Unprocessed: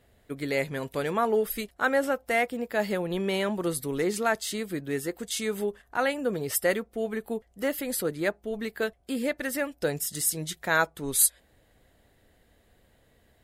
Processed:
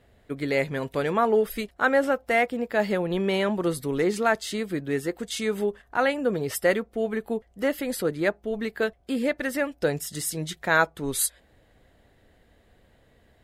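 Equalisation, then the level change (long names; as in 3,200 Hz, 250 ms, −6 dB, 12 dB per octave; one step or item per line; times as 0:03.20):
high-shelf EQ 6,700 Hz −11 dB
+3.5 dB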